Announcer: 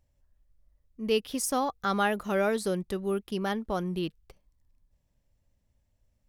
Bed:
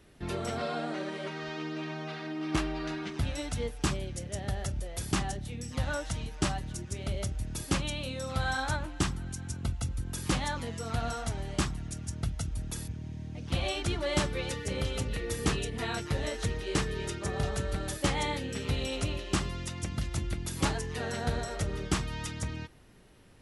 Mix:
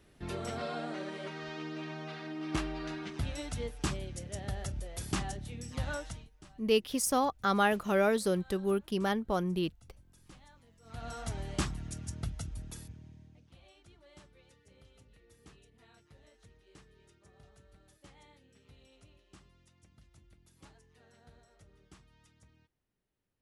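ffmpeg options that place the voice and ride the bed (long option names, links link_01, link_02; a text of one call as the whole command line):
ffmpeg -i stem1.wav -i stem2.wav -filter_complex "[0:a]adelay=5600,volume=-0.5dB[link_01];[1:a]volume=19.5dB,afade=type=out:start_time=5.96:duration=0.34:silence=0.0749894,afade=type=in:start_time=10.81:duration=0.55:silence=0.0668344,afade=type=out:start_time=12:duration=1.53:silence=0.0530884[link_02];[link_01][link_02]amix=inputs=2:normalize=0" out.wav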